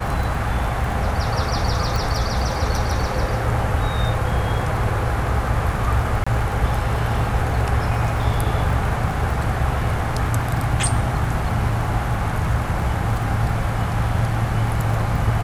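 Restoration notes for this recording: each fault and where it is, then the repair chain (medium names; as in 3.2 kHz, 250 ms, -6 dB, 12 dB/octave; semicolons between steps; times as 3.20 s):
crackle 29 per s -27 dBFS
1.96 s: pop
6.24–6.26 s: dropout 25 ms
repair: de-click; interpolate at 6.24 s, 25 ms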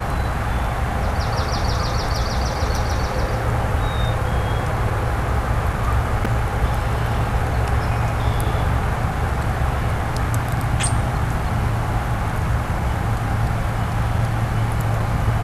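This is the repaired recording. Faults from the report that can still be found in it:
nothing left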